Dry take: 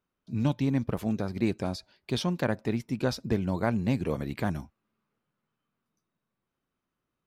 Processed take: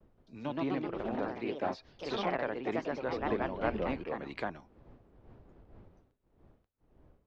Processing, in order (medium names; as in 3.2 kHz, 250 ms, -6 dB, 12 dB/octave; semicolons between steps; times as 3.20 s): wind noise 80 Hz -36 dBFS; expander -54 dBFS; ever faster or slower copies 172 ms, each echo +2 st, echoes 3; three-band isolator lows -18 dB, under 320 Hz, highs -16 dB, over 6.1 kHz; low-pass that closes with the level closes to 2.7 kHz, closed at -30 dBFS; tremolo triangle 1.9 Hz, depth 55%